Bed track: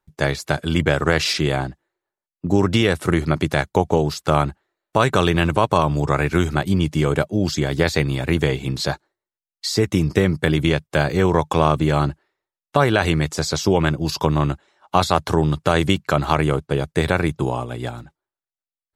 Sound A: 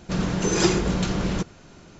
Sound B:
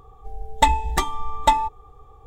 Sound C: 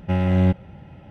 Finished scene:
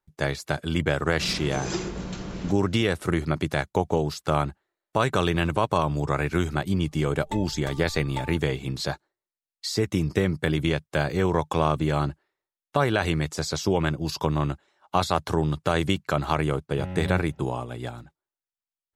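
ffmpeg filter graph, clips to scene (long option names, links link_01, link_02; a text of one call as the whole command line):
ffmpeg -i bed.wav -i cue0.wav -i cue1.wav -i cue2.wav -filter_complex "[0:a]volume=-6dB[link_01];[1:a]asplit=2[link_02][link_03];[link_03]adelay=130,highpass=300,lowpass=3400,asoftclip=type=hard:threshold=-15.5dB,volume=-16dB[link_04];[link_02][link_04]amix=inputs=2:normalize=0,atrim=end=1.99,asetpts=PTS-STARTPTS,volume=-10dB,afade=type=in:duration=0.004:curve=hsin,afade=type=out:start_time=1.986:duration=0.004:curve=hsin,adelay=1100[link_05];[2:a]atrim=end=2.26,asetpts=PTS-STARTPTS,volume=-18dB,afade=type=in:duration=0.004:curve=hsin,afade=type=out:start_time=2.256:duration=0.004:curve=hsin,adelay=6690[link_06];[3:a]atrim=end=1.1,asetpts=PTS-STARTPTS,volume=-13dB,afade=type=in:duration=0.004:curve=hsin,afade=type=out:start_time=1.096:duration=0.004:curve=hsin,adelay=16690[link_07];[link_01][link_05][link_06][link_07]amix=inputs=4:normalize=0" out.wav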